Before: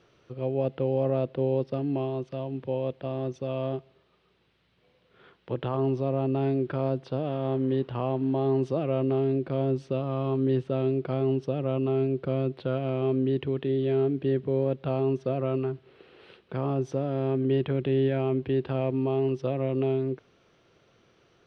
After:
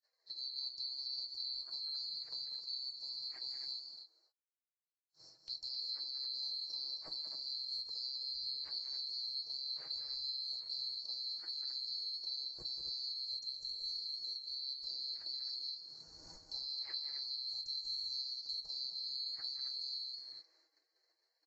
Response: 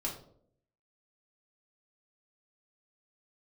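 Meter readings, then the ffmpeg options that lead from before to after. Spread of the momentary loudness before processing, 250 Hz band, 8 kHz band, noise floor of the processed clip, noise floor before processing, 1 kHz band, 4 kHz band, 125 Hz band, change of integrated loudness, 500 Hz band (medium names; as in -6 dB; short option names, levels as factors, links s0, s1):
6 LU, under -40 dB, no reading, -84 dBFS, -66 dBFS, under -30 dB, +14.0 dB, under -40 dB, -11.5 dB, under -40 dB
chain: -filter_complex "[0:a]afftfilt=real='real(if(lt(b,736),b+184*(1-2*mod(floor(b/184),2)),b),0)':imag='imag(if(lt(b,736),b+184*(1-2*mod(floor(b/184),2)),b),0)':win_size=2048:overlap=0.75,bandreject=f=62.65:t=h:w=4,bandreject=f=125.3:t=h:w=4,bandreject=f=187.95:t=h:w=4,bandreject=f=250.6:t=h:w=4,bandreject=f=313.25:t=h:w=4,agate=range=0.002:threshold=0.00112:ratio=16:detection=peak,lowpass=2200,equalizer=f=210:t=o:w=0.54:g=-8.5,aecho=1:1:6.3:0.33,acompressor=threshold=0.002:ratio=3,flanger=delay=3.4:depth=6.5:regen=-56:speed=0.49:shape=sinusoidal,asplit=2[s0][s1];[s1]aecho=0:1:192.4|265.3:0.355|0.398[s2];[s0][s2]amix=inputs=2:normalize=0,volume=4.73" -ar 44100 -c:a libvorbis -b:a 32k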